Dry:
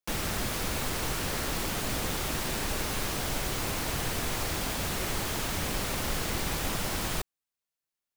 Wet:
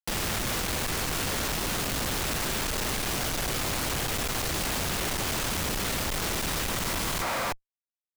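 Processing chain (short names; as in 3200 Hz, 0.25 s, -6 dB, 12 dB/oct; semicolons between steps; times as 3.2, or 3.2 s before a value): spectral repair 6.77–7.49, 500–2500 Hz before; Schmitt trigger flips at -45 dBFS; gain +2.5 dB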